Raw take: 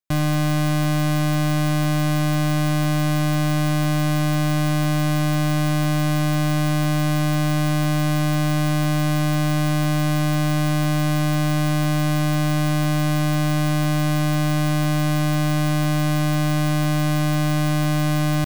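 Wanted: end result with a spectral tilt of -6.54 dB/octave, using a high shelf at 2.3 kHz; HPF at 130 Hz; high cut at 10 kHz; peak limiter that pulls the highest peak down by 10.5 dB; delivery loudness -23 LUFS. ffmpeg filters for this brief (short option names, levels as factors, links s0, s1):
-af "highpass=130,lowpass=10000,highshelf=f=2300:g=-6,volume=2.99,alimiter=limit=0.188:level=0:latency=1"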